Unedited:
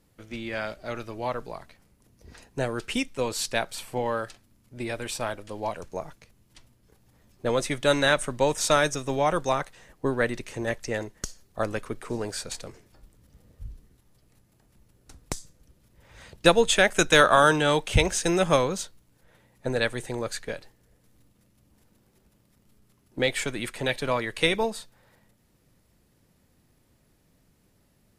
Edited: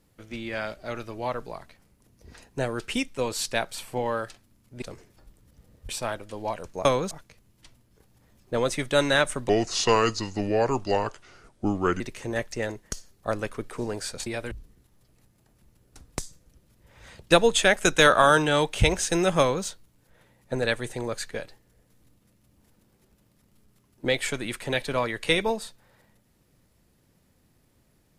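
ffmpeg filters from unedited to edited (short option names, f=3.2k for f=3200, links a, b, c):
-filter_complex "[0:a]asplit=9[a][b][c][d][e][f][g][h][i];[a]atrim=end=4.822[j];[b]atrim=start=12.578:end=13.652[k];[c]atrim=start=5.068:end=6.032[l];[d]atrim=start=18.528:end=18.792[m];[e]atrim=start=6.028:end=8.414[n];[f]atrim=start=8.41:end=10.32,asetpts=PTS-STARTPTS,asetrate=33516,aresample=44100,atrim=end_sample=110830,asetpts=PTS-STARTPTS[o];[g]atrim=start=10.316:end=12.582[p];[h]atrim=start=4.818:end=5.072[q];[i]atrim=start=13.648[r];[j][k]acrossfade=d=0.004:c1=hsin:c2=hsin[s];[s][l]acrossfade=d=0.004:c1=hsin:c2=hsin[t];[t][m]acrossfade=d=0.004:c1=hsin:c2=hsin[u];[u][n]acrossfade=d=0.004:c1=hsin:c2=hsin[v];[v][o]acrossfade=d=0.004:c1=hsin:c2=hsin[w];[w][p]acrossfade=d=0.004:c1=hsin:c2=hsin[x];[x][q]acrossfade=d=0.004:c1=hsin:c2=hsin[y];[y][r]acrossfade=d=0.004:c1=hsin:c2=hsin"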